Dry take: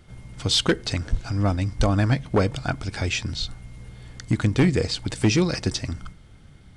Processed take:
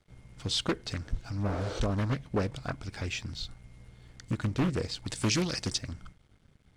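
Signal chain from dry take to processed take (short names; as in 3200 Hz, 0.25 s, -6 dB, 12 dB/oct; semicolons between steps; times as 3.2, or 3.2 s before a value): 1.5–1.77 spectral repair 300–8800 Hz both; 5.06–5.78 high shelf 3000 Hz +9.5 dB; crossover distortion -52 dBFS; Doppler distortion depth 0.63 ms; gain -9 dB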